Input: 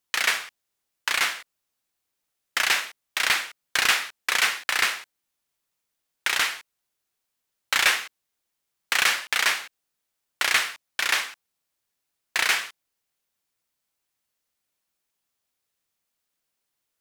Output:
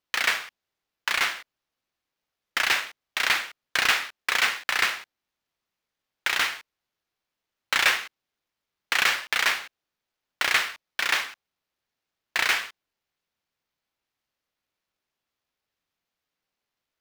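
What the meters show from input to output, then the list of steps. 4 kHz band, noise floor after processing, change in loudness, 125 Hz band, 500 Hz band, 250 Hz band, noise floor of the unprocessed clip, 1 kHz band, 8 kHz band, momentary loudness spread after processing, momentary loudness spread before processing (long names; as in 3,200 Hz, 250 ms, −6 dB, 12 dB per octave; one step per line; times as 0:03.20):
−1.5 dB, below −85 dBFS, −1.0 dB, can't be measured, 0.0 dB, +1.0 dB, −81 dBFS, 0.0 dB, −4.5 dB, 11 LU, 11 LU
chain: running median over 5 samples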